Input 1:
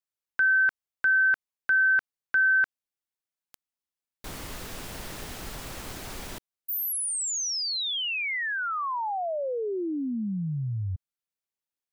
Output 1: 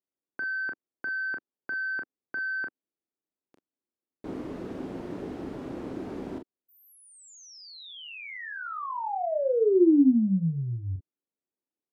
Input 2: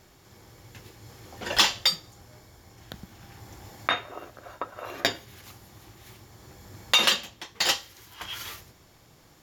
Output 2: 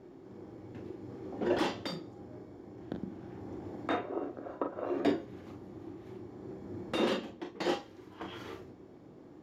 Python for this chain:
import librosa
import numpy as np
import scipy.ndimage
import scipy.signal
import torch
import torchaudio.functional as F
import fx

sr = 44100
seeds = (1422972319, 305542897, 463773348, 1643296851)

p1 = fx.fold_sine(x, sr, drive_db=12, ceiling_db=-5.5)
p2 = x + (p1 * librosa.db_to_amplitude(-4.0))
p3 = fx.bandpass_q(p2, sr, hz=310.0, q=2.0)
p4 = fx.room_early_taps(p3, sr, ms=(31, 42), db=(-9.5, -8.0))
y = p4 * librosa.db_to_amplitude(-2.5)